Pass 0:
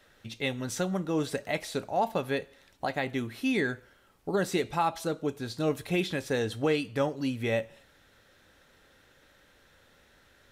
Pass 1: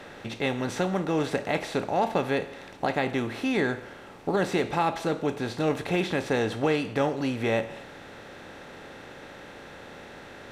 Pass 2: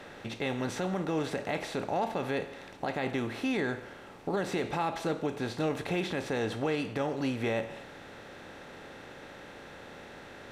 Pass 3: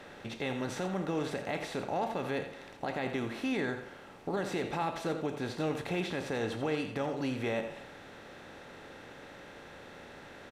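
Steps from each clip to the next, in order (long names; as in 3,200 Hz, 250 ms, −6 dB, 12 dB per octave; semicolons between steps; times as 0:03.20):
compressor on every frequency bin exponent 0.6; high-shelf EQ 6,400 Hz −11.5 dB
brickwall limiter −18.5 dBFS, peak gain reduction 6 dB; level −3 dB
single-tap delay 84 ms −10.5 dB; level −2.5 dB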